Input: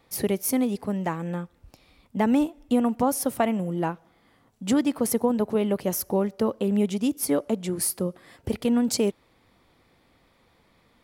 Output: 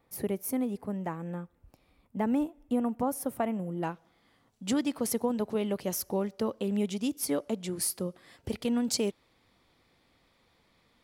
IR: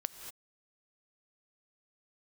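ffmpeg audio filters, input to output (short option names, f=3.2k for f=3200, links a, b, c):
-af "asetnsamples=n=441:p=0,asendcmd='3.83 equalizer g 5',equalizer=f=4.6k:w=0.62:g=-8,volume=-6.5dB"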